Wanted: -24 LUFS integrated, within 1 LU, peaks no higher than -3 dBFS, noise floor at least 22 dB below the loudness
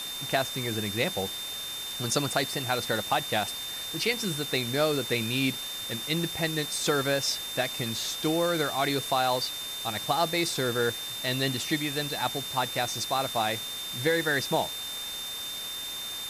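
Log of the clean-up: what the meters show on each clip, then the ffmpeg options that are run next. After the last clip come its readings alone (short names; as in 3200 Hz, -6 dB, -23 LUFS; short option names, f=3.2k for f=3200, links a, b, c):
steady tone 3600 Hz; tone level -35 dBFS; noise floor -36 dBFS; noise floor target -51 dBFS; loudness -28.5 LUFS; peak -11.5 dBFS; loudness target -24.0 LUFS
-> -af "bandreject=f=3.6k:w=30"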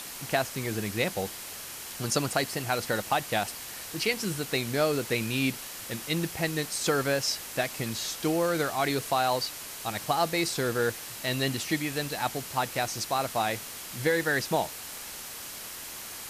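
steady tone none; noise floor -41 dBFS; noise floor target -52 dBFS
-> -af "afftdn=nr=11:nf=-41"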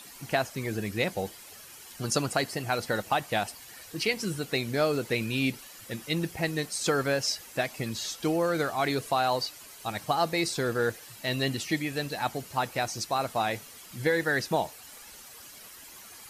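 noise floor -48 dBFS; noise floor target -52 dBFS
-> -af "afftdn=nr=6:nf=-48"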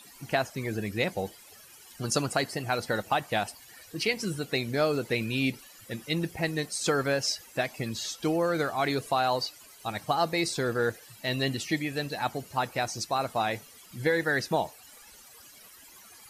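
noise floor -52 dBFS; loudness -29.5 LUFS; peak -12.0 dBFS; loudness target -24.0 LUFS
-> -af "volume=5.5dB"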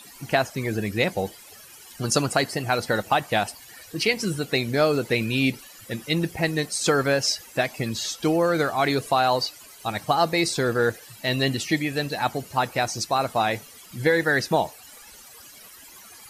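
loudness -24.0 LUFS; peak -6.5 dBFS; noise floor -47 dBFS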